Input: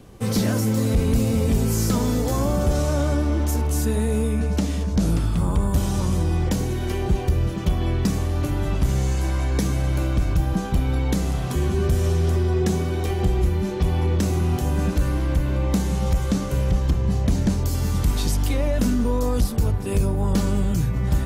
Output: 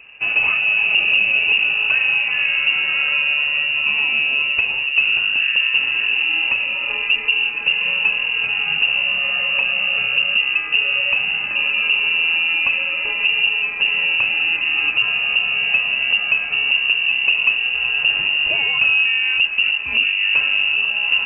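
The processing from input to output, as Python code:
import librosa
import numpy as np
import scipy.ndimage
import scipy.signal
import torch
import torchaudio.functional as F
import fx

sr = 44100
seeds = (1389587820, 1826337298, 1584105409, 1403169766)

y = fx.graphic_eq_10(x, sr, hz=(250, 500, 2000), db=(7, -5, 7))
y = fx.freq_invert(y, sr, carrier_hz=2800)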